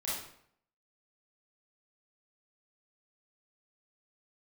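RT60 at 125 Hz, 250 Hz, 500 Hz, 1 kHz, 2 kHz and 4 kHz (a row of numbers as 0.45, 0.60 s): 0.70, 0.65, 0.65, 0.65, 0.60, 0.50 s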